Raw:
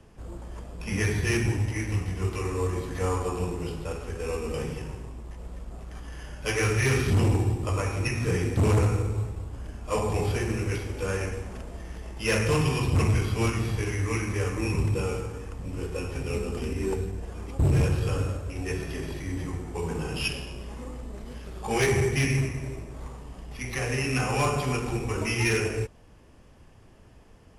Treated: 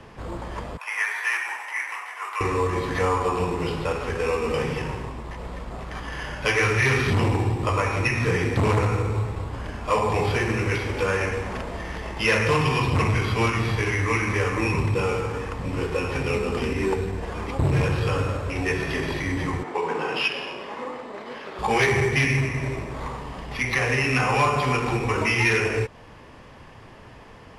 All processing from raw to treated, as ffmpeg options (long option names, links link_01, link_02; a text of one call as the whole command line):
ffmpeg -i in.wav -filter_complex "[0:a]asettb=1/sr,asplit=3[link_01][link_02][link_03];[link_01]atrim=end=0.774[link_04];[link_02]atrim=start=0.77:end=2.41,asetpts=PTS-STARTPTS,afade=type=in:duration=0.004:curve=qsin,afade=type=out:start_time=1.636:duration=0.004:curve=qsin,highpass=frequency=890:width=0.5412,highpass=frequency=890:width=1.3066,equalizer=frequency=4300:width=0.83:gain=-13.5[link_05];[link_03]atrim=start=2.406[link_06];[link_04][link_05]acrossfade=duration=0.004:curve1=hsin:curve2=qsin[link_07];[link_07][link_06]acrossfade=duration=0.004:curve1=qsin:curve2=hsin,asettb=1/sr,asplit=3[link_08][link_09][link_10];[link_08]atrim=end=19.634[link_11];[link_09]atrim=start=19.63:end=21.59,asetpts=PTS-STARTPTS,afade=type=in:duration=0.004:curve=qsin,afade=type=out:start_time=1.956:duration=0.004:curve=qsin,highpass=340,aemphasis=mode=reproduction:type=50kf[link_12];[link_10]atrim=start=21.586[link_13];[link_11][link_12]acrossfade=duration=0.004:curve1=hsin:curve2=qsin[link_14];[link_14][link_13]acrossfade=duration=0.004:curve1=qsin:curve2=hsin,equalizer=frequency=125:width_type=o:width=1:gain=6,equalizer=frequency=250:width_type=o:width=1:gain=4,equalizer=frequency=500:width_type=o:width=1:gain=6,equalizer=frequency=1000:width_type=o:width=1:gain=11,equalizer=frequency=2000:width_type=o:width=1:gain=10,equalizer=frequency=4000:width_type=o:width=1:gain=9,acompressor=threshold=-25dB:ratio=2,volume=1.5dB" out.wav